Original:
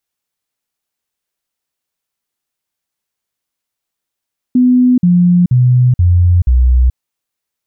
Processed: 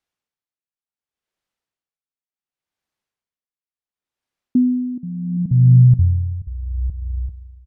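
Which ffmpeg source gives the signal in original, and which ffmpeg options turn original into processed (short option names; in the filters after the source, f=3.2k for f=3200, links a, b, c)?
-f lavfi -i "aevalsrc='0.531*clip(min(mod(t,0.48),0.43-mod(t,0.48))/0.005,0,1)*sin(2*PI*250*pow(2,-floor(t/0.48)/2)*mod(t,0.48))':d=2.4:s=44100"
-af "aemphasis=mode=reproduction:type=50fm,aecho=1:1:393|786|1179:0.2|0.0499|0.0125,aeval=exprs='val(0)*pow(10,-19*(0.5-0.5*cos(2*PI*0.69*n/s))/20)':c=same"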